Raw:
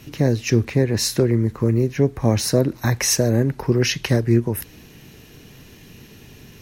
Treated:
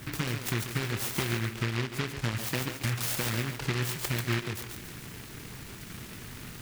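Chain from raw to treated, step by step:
downward compressor 6 to 1, threshold −30 dBFS, peak gain reduction 17.5 dB
feedback echo with a high-pass in the loop 140 ms, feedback 40%, high-pass 540 Hz, level −3.5 dB
on a send at −10 dB: convolution reverb RT60 2.1 s, pre-delay 4 ms
on the sum: short delay modulated by noise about 1,800 Hz, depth 0.36 ms

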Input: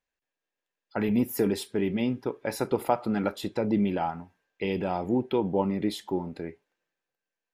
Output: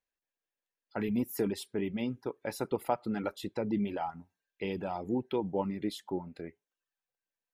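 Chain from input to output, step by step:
reverb reduction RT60 0.57 s
level −5.5 dB

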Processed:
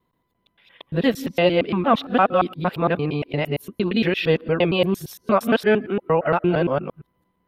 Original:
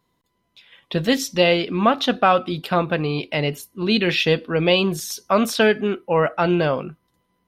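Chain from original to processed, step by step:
reversed piece by piece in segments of 115 ms
parametric band 6,400 Hz −14.5 dB 1.6 octaves

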